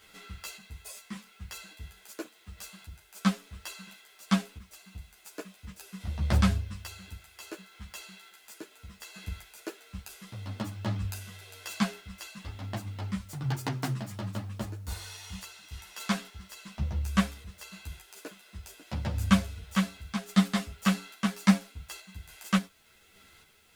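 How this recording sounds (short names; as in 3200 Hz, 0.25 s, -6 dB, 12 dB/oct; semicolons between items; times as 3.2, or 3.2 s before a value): random-step tremolo 3.5 Hz; a quantiser's noise floor 12-bit, dither triangular; a shimmering, thickened sound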